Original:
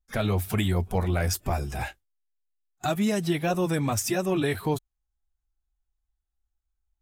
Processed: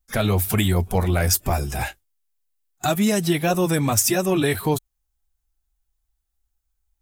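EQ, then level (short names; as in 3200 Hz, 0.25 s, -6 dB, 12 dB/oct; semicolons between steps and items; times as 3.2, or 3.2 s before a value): high shelf 6600 Hz +9 dB; +5.0 dB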